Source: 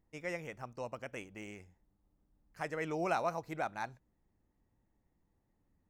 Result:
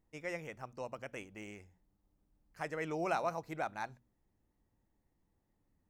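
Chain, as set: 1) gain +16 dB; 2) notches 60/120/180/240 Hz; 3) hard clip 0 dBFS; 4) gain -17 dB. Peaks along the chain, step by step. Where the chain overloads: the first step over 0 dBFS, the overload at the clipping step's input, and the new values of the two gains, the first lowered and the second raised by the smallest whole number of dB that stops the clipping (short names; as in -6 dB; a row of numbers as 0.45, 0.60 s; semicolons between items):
-4.0, -4.0, -4.0, -21.0 dBFS; no overload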